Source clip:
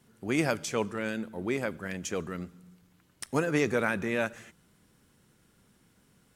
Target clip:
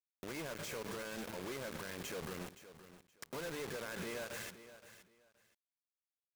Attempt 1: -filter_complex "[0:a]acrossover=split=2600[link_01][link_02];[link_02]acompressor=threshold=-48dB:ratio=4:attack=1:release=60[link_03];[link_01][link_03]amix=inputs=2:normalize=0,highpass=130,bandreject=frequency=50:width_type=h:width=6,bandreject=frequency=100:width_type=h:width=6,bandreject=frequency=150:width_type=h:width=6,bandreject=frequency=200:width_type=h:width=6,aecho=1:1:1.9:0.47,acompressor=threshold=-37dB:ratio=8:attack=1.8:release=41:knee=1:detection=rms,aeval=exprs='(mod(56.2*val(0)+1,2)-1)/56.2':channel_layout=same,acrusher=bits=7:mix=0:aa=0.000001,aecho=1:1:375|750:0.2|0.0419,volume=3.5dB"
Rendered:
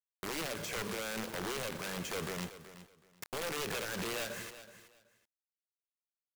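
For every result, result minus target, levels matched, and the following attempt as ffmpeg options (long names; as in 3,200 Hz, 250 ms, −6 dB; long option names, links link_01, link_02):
downward compressor: peak gain reduction −6.5 dB; echo 146 ms early
-filter_complex "[0:a]acrossover=split=2600[link_01][link_02];[link_02]acompressor=threshold=-48dB:ratio=4:attack=1:release=60[link_03];[link_01][link_03]amix=inputs=2:normalize=0,highpass=130,bandreject=frequency=50:width_type=h:width=6,bandreject=frequency=100:width_type=h:width=6,bandreject=frequency=150:width_type=h:width=6,bandreject=frequency=200:width_type=h:width=6,aecho=1:1:1.9:0.47,acompressor=threshold=-44.5dB:ratio=8:attack=1.8:release=41:knee=1:detection=rms,aeval=exprs='(mod(56.2*val(0)+1,2)-1)/56.2':channel_layout=same,acrusher=bits=7:mix=0:aa=0.000001,aecho=1:1:375|750:0.2|0.0419,volume=3.5dB"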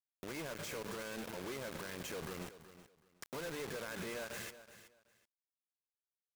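echo 146 ms early
-filter_complex "[0:a]acrossover=split=2600[link_01][link_02];[link_02]acompressor=threshold=-48dB:ratio=4:attack=1:release=60[link_03];[link_01][link_03]amix=inputs=2:normalize=0,highpass=130,bandreject=frequency=50:width_type=h:width=6,bandreject=frequency=100:width_type=h:width=6,bandreject=frequency=150:width_type=h:width=6,bandreject=frequency=200:width_type=h:width=6,aecho=1:1:1.9:0.47,acompressor=threshold=-44.5dB:ratio=8:attack=1.8:release=41:knee=1:detection=rms,aeval=exprs='(mod(56.2*val(0)+1,2)-1)/56.2':channel_layout=same,acrusher=bits=7:mix=0:aa=0.000001,aecho=1:1:521|1042:0.2|0.0419,volume=3.5dB"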